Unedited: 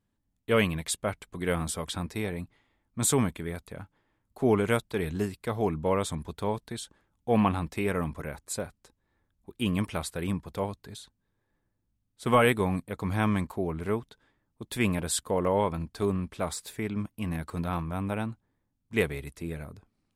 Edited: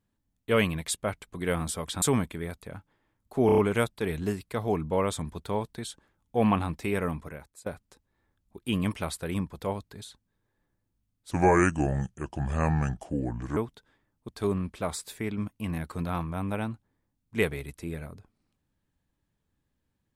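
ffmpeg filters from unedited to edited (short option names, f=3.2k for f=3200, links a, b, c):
-filter_complex "[0:a]asplit=10[a][b][c][d][e][f][g][h][i][j];[a]atrim=end=2.022[k];[b]atrim=start=3.068:end=4.542[l];[c]atrim=start=4.508:end=4.542[m];[d]atrim=start=4.508:end=4.542[n];[e]atrim=start=4.508:end=4.542[o];[f]atrim=start=4.508:end=8.59,asetpts=PTS-STARTPTS,afade=t=out:st=3.482:d=0.6:silence=0.0749894[p];[g]atrim=start=8.59:end=12.244,asetpts=PTS-STARTPTS,afade=t=in:d=0.004:c=hsin:silence=0.0749894[q];[h]atrim=start=12.24:end=13.91,asetpts=PTS-STARTPTS,asetrate=32634,aresample=44100[r];[i]atrim=start=13.906:end=14.632[s];[j]atrim=start=15.868[t];[k][l]acrossfade=d=0.004:c1=hsin:c2=hsin[u];[u][m]acrossfade=d=0.004:c1=hsin:c2=hsin[v];[v][n]acrossfade=d=0.004:c1=hsin:c2=hsin[w];[w][o]acrossfade=d=0.004:c1=hsin:c2=hsin[x];[p][q]concat=n=2:v=0:a=1[y];[x][y]acrossfade=d=0.004:c1=hsin:c2=hsin[z];[z][r]acrossfade=d=0.004:c1=hsin:c2=hsin[aa];[aa][s]acrossfade=d=0.004:c1=hsin:c2=hsin[ab];[ab][t]acrossfade=d=0.004:c1=hsin:c2=hsin"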